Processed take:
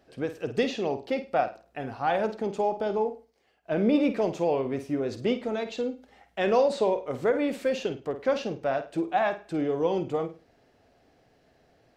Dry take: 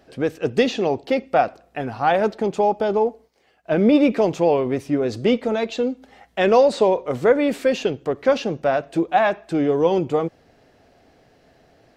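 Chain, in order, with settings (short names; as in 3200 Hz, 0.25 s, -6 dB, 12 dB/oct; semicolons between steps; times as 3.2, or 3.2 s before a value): flutter echo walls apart 8.8 m, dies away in 0.3 s; ending taper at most 230 dB/s; gain -8 dB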